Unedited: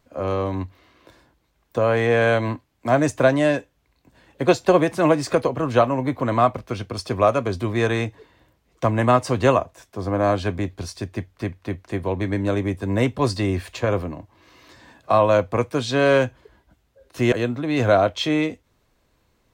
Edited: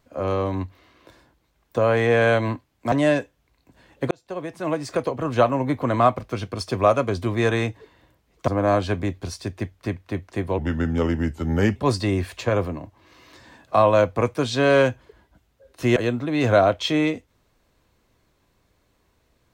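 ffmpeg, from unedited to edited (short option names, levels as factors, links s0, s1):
-filter_complex "[0:a]asplit=6[s0][s1][s2][s3][s4][s5];[s0]atrim=end=2.922[s6];[s1]atrim=start=3.298:end=4.49,asetpts=PTS-STARTPTS,afade=t=out:st=1.188:d=0.004:c=hsin[s7];[s2]atrim=start=4.49:end=8.862,asetpts=PTS-STARTPTS,afade=t=in:d=1.48[s8];[s3]atrim=start=10.038:end=12.144[s9];[s4]atrim=start=12.14:end=13.12,asetpts=PTS-STARTPTS,asetrate=36603,aresample=44100[s10];[s5]atrim=start=13.116[s11];[s7][s8]concat=n=2:v=0:a=1[s12];[s6][s12]acrossfade=d=0.004:c1=hsin:c2=hsin[s13];[s13][s9]acrossfade=d=0.004:c1=hsin:c2=hsin[s14];[s14][s10]acrossfade=d=0.004:c1=hsin:c2=hsin[s15];[s15][s11]acrossfade=d=0.004:c1=hsin:c2=hsin"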